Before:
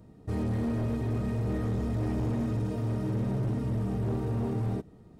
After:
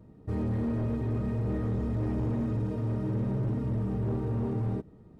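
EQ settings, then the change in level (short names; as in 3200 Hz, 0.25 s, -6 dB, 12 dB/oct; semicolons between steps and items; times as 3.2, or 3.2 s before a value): high shelf 3000 Hz -11.5 dB; notch 710 Hz, Q 12; 0.0 dB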